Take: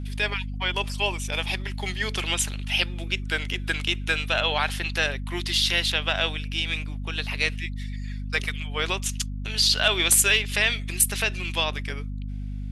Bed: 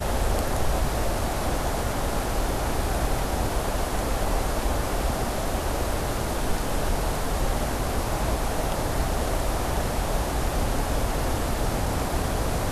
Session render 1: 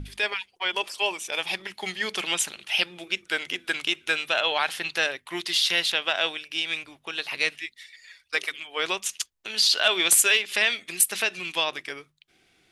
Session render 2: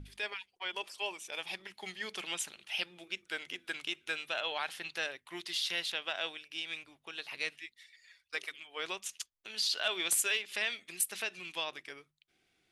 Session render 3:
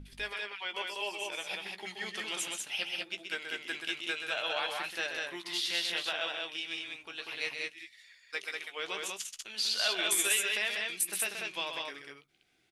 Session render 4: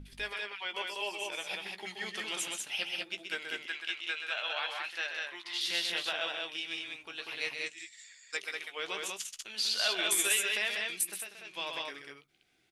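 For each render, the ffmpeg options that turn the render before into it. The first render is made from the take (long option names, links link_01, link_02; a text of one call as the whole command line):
ffmpeg -i in.wav -af "bandreject=frequency=50:width_type=h:width=6,bandreject=frequency=100:width_type=h:width=6,bandreject=frequency=150:width_type=h:width=6,bandreject=frequency=200:width_type=h:width=6,bandreject=frequency=250:width_type=h:width=6" out.wav
ffmpeg -i in.wav -af "volume=-11.5dB" out.wav
ffmpeg -i in.wav -filter_complex "[0:a]asplit=2[link_01][link_02];[link_02]adelay=15,volume=-9dB[link_03];[link_01][link_03]amix=inputs=2:normalize=0,aecho=1:1:128.3|192.4:0.447|0.708" out.wav
ffmpeg -i in.wav -filter_complex "[0:a]asettb=1/sr,asplit=3[link_01][link_02][link_03];[link_01]atrim=end=3.664[link_04];[link_02]atrim=start=3.66:end=5.61,asetpts=PTS-STARTPTS,afade=type=in:duration=0.004:curve=qsin,afade=type=out:start_time=1.946:duration=0.004:curve=qsin,bandpass=frequency=2100:width_type=q:width=0.52[link_05];[link_03]atrim=start=5.606[link_06];[link_04][link_05]acrossfade=duration=0.004:curve1=hsin:curve2=qsin[link_07];[link_07][link_06]acrossfade=duration=0.004:curve1=qsin:curve2=hsin,asettb=1/sr,asplit=3[link_08][link_09][link_10];[link_08]atrim=end=7.664[link_11];[link_09]atrim=start=7.66:end=8.37,asetpts=PTS-STARTPTS,afade=type=in:duration=0.004:curve=qsin,afade=type=out:start_time=0.706:duration=0.004:curve=qsin,lowpass=frequency=7500:width_type=q:width=13[link_12];[link_10]atrim=start=8.366[link_13];[link_11][link_12]acrossfade=duration=0.004:curve1=hsin:curve2=qsin[link_14];[link_14][link_13]acrossfade=duration=0.004:curve1=qsin:curve2=hsin,asplit=3[link_15][link_16][link_17];[link_15]atrim=end=11.25,asetpts=PTS-STARTPTS,afade=type=out:start_time=11:duration=0.25:silence=0.281838[link_18];[link_16]atrim=start=11.25:end=11.44,asetpts=PTS-STARTPTS,volume=-11dB[link_19];[link_17]atrim=start=11.44,asetpts=PTS-STARTPTS,afade=type=in:duration=0.25:silence=0.281838[link_20];[link_18][link_19][link_20]concat=n=3:v=0:a=1" out.wav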